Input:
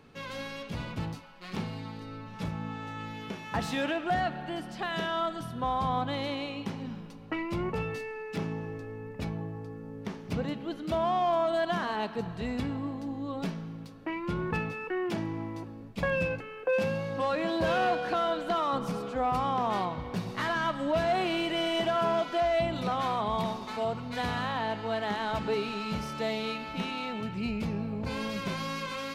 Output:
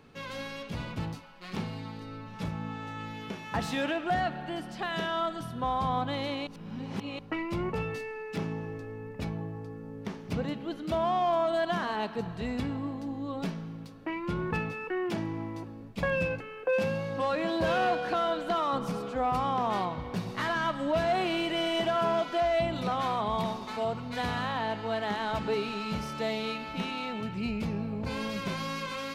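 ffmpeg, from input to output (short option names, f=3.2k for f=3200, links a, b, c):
-filter_complex "[0:a]asplit=3[a][b][c];[a]atrim=end=6.472[d];[b]atrim=start=6.468:end=7.192,asetpts=PTS-STARTPTS,areverse[e];[c]atrim=start=7.188[f];[d][e]acrossfade=d=0.004:c1=hsin:c2=hsin[g];[g][f]acrossfade=d=0.004:c1=hsin:c2=hsin"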